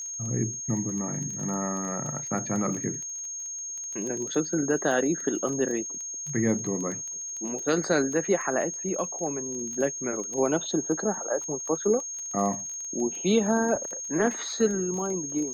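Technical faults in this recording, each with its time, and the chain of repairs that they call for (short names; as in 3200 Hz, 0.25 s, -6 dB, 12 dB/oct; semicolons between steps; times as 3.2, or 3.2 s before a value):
crackle 21/s -33 dBFS
tone 6500 Hz -33 dBFS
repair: de-click; notch 6500 Hz, Q 30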